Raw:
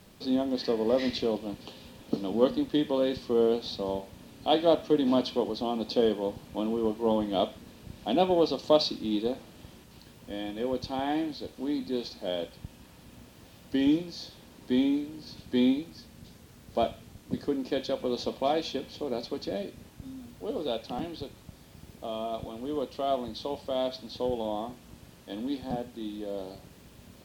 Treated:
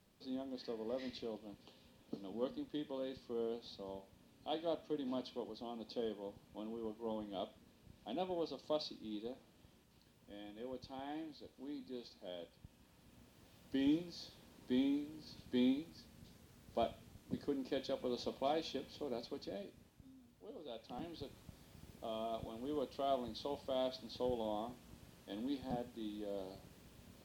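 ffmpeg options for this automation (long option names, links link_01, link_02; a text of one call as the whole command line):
ffmpeg -i in.wav -af "volume=0.5dB,afade=type=in:start_time=12.57:duration=1.32:silence=0.473151,afade=type=out:start_time=19.03:duration=1.14:silence=0.354813,afade=type=in:start_time=20.67:duration=0.69:silence=0.298538" out.wav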